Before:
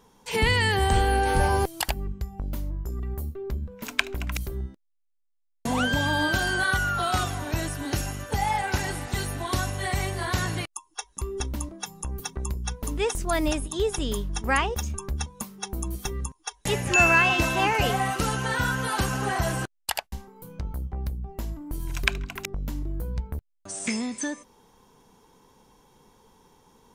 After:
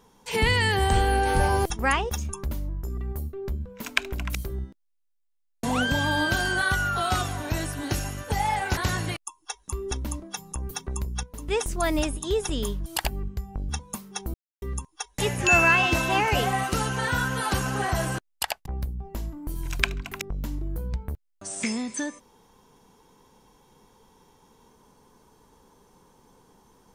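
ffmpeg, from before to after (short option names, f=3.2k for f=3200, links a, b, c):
-filter_complex "[0:a]asplit=11[a][b][c][d][e][f][g][h][i][j][k];[a]atrim=end=1.702[l];[b]atrim=start=14.348:end=15.162[m];[c]atrim=start=2.528:end=8.792[n];[d]atrim=start=10.258:end=12.722[o];[e]atrim=start=12.718:end=12.972,asetpts=PTS-STARTPTS,volume=-8dB[p];[f]atrim=start=12.968:end=14.352[q];[g]atrim=start=1.698:end=2.532[r];[h]atrim=start=15.158:end=15.81,asetpts=PTS-STARTPTS,afade=t=out:st=0.648:d=0.004:c=hsin[s];[i]atrim=start=15.81:end=16.09,asetpts=PTS-STARTPTS,volume=0[t];[j]atrim=start=16.09:end=20.132,asetpts=PTS-STARTPTS,afade=t=in:d=0.004:c=hsin[u];[k]atrim=start=20.898[v];[l][m]acrossfade=d=0.004:c1=hsin:c2=hsin[w];[w][n]acrossfade=d=0.004:c1=hsin:c2=hsin[x];[x][o]acrossfade=d=0.004:c1=hsin:c2=hsin[y];[y][p]acrossfade=d=0.004:c1=hsin:c2=hsin[z];[z][q]acrossfade=d=0.004:c1=hsin:c2=hsin[aa];[aa][r]acrossfade=d=0.004:c1=hsin:c2=hsin[ab];[s][t][u]concat=n=3:v=0:a=1[ac];[ab][ac]acrossfade=d=0.004:c1=hsin:c2=hsin[ad];[ad][v]acrossfade=d=0.004:c1=hsin:c2=hsin"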